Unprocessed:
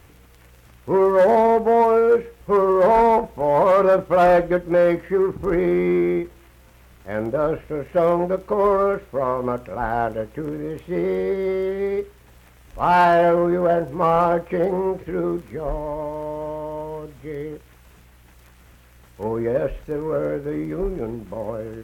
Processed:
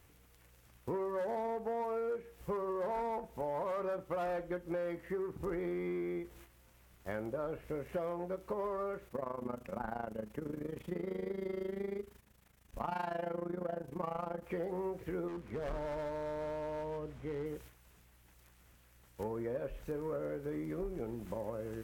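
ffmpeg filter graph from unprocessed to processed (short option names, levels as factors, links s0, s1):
-filter_complex "[0:a]asettb=1/sr,asplit=3[s0][s1][s2];[s0]atrim=end=9.084[s3];[s1]atrim=start=9.08:end=14.44,asetpts=PTS-STARTPTS,afade=t=in:d=0.004:c=qsin,afade=t=out:st=5.356:d=0.004:c=qsin,tremolo=f=26:d=0.824,equalizer=f=210:t=o:w=0.35:g=9.5[s4];[s2]atrim=start=14.436[s5];[s3][s4]acrossfade=d=0.004:c1=hsin:c2=qsin[s6];[s6][s5]acrossfade=d=0.004:c1=qsin:c2=hsin,asettb=1/sr,asplit=3[s7][s8][s9];[s7]atrim=end=15.284[s10];[s8]atrim=start=15.28:end=17.46,asetpts=PTS-STARTPTS,afade=t=in:d=0.004:c=qsin,afade=t=out:st=2.176:d=0.004:c=qsin,aemphasis=mode=reproduction:type=75kf,volume=20,asoftclip=hard,volume=0.0501[s11];[s9]atrim=start=17.456[s12];[s10][s11]acrossfade=d=0.004:c1=hsin:c2=qsin[s13];[s13][s12]acrossfade=d=0.004:c1=qsin:c2=hsin,agate=range=0.355:threshold=0.00501:ratio=16:detection=peak,highshelf=f=4500:g=6,acompressor=threshold=0.0282:ratio=5,volume=0.531"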